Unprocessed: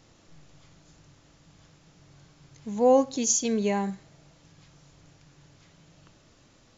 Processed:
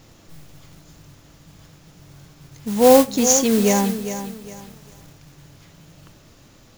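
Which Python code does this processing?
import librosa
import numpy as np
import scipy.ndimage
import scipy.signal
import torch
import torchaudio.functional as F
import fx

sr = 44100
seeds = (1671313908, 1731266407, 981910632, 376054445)

y = fx.mod_noise(x, sr, seeds[0], snr_db=12)
y = fx.low_shelf(y, sr, hz=240.0, db=3.5)
y = fx.echo_crushed(y, sr, ms=405, feedback_pct=35, bits=8, wet_db=-10.5)
y = y * librosa.db_to_amplitude(7.0)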